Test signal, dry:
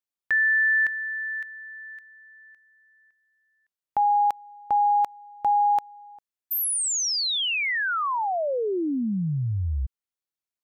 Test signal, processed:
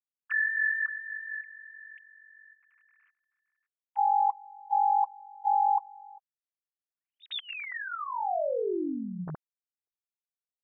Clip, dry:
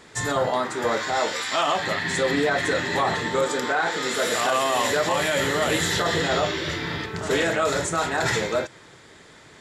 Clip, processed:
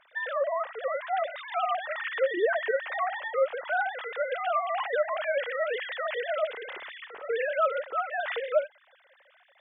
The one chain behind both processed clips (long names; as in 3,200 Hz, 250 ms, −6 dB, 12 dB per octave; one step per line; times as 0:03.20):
three sine waves on the formant tracks
level −6 dB